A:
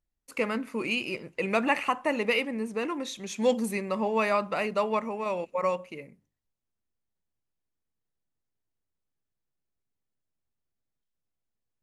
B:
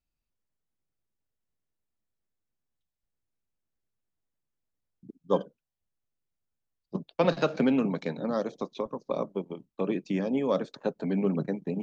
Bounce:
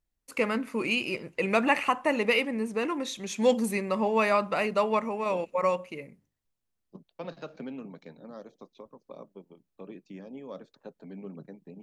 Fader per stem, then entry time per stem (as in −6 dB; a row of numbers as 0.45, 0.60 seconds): +1.5, −15.0 decibels; 0.00, 0.00 seconds